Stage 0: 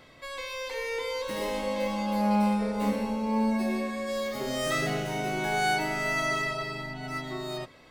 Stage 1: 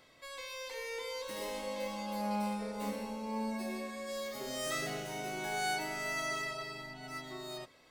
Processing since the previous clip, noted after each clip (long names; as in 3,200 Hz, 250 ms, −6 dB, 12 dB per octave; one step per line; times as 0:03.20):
bass and treble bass −5 dB, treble +6 dB
level −8.5 dB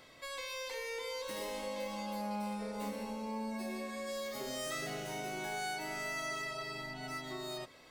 downward compressor 2.5 to 1, threshold −44 dBFS, peak gain reduction 9.5 dB
level +4.5 dB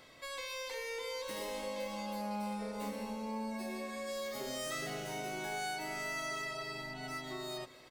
single-tap delay 233 ms −19.5 dB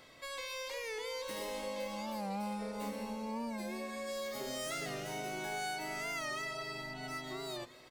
wow of a warped record 45 rpm, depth 100 cents